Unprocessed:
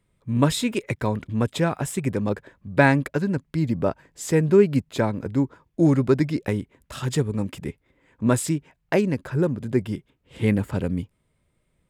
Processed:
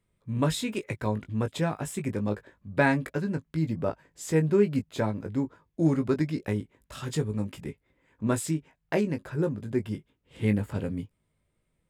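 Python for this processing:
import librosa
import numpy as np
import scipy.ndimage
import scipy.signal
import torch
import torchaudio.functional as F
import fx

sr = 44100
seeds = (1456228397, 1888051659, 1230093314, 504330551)

y = fx.doubler(x, sr, ms=19.0, db=-7)
y = F.gain(torch.from_numpy(y), -6.5).numpy()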